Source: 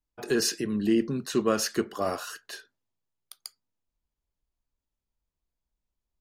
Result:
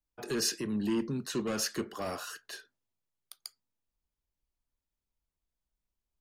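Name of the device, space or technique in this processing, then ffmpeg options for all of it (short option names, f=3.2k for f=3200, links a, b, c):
one-band saturation: -filter_complex "[0:a]acrossover=split=240|2500[a][b][c];[b]asoftclip=type=tanh:threshold=-29.5dB[d];[a][d][c]amix=inputs=3:normalize=0,volume=-3dB"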